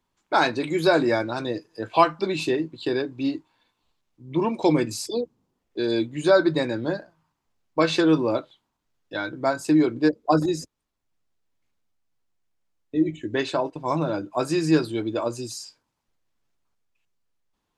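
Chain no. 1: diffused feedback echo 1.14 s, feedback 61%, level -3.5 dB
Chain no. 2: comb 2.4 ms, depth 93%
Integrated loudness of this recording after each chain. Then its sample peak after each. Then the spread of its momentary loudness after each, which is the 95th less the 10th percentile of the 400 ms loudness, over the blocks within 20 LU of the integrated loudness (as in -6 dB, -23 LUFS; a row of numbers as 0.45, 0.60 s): -23.5, -21.5 LUFS; -3.5, -4.0 dBFS; 9, 12 LU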